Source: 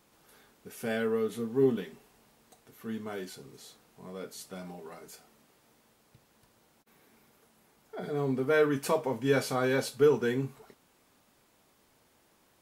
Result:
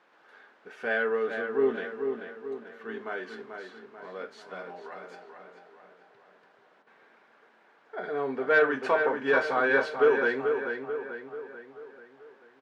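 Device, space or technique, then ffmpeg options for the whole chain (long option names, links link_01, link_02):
intercom: -filter_complex "[0:a]highpass=470,lowpass=3600,equalizer=frequency=1600:width_type=o:width=0.41:gain=8,asoftclip=type=tanh:threshold=-16.5dB,highshelf=frequency=4200:gain=-11.5,asplit=2[link_01][link_02];[link_02]adelay=438,lowpass=frequency=3200:poles=1,volume=-6dB,asplit=2[link_03][link_04];[link_04]adelay=438,lowpass=frequency=3200:poles=1,volume=0.51,asplit=2[link_05][link_06];[link_06]adelay=438,lowpass=frequency=3200:poles=1,volume=0.51,asplit=2[link_07][link_08];[link_08]adelay=438,lowpass=frequency=3200:poles=1,volume=0.51,asplit=2[link_09][link_10];[link_10]adelay=438,lowpass=frequency=3200:poles=1,volume=0.51,asplit=2[link_11][link_12];[link_12]adelay=438,lowpass=frequency=3200:poles=1,volume=0.51[link_13];[link_01][link_03][link_05][link_07][link_09][link_11][link_13]amix=inputs=7:normalize=0,volume=5.5dB"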